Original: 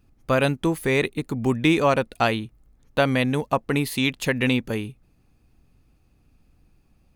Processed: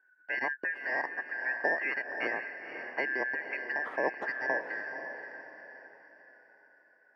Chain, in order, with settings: four-band scrambler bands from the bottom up 3142; Chebyshev band-pass 300–1000 Hz, order 2; diffused feedback echo 0.515 s, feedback 42%, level -8 dB; gain +1.5 dB

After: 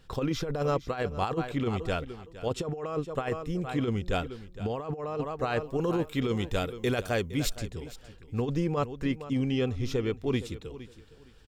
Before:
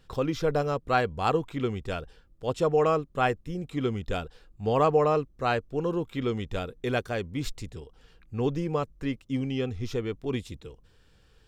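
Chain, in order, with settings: 5.59–7.52 high shelf 6500 Hz +10 dB; feedback echo 0.463 s, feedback 22%, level -16 dB; negative-ratio compressor -27 dBFS, ratio -0.5

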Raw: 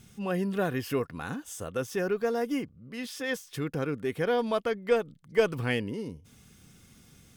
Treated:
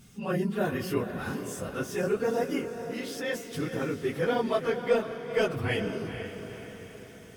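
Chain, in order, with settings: phase scrambler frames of 50 ms; diffused feedback echo 0.466 s, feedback 53%, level -9 dB

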